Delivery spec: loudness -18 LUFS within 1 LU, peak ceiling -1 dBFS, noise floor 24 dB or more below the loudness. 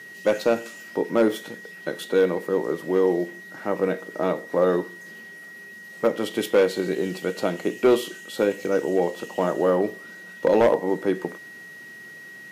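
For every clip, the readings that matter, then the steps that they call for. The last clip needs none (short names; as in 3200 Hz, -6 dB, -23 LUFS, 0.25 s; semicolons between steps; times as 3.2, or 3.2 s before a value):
clipped 0.4%; flat tops at -11.0 dBFS; steady tone 1900 Hz; tone level -40 dBFS; loudness -24.0 LUFS; peak -11.0 dBFS; loudness target -18.0 LUFS
-> clip repair -11 dBFS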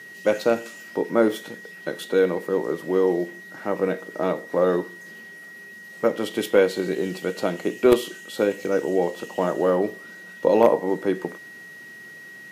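clipped 0.0%; steady tone 1900 Hz; tone level -40 dBFS
-> notch 1900 Hz, Q 30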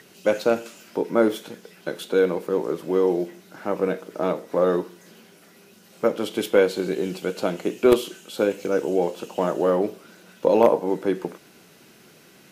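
steady tone none; loudness -23.5 LUFS; peak -2.0 dBFS; loudness target -18.0 LUFS
-> gain +5.5 dB; limiter -1 dBFS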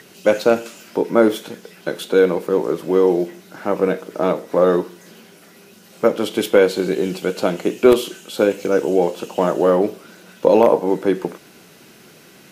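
loudness -18.5 LUFS; peak -1.0 dBFS; noise floor -47 dBFS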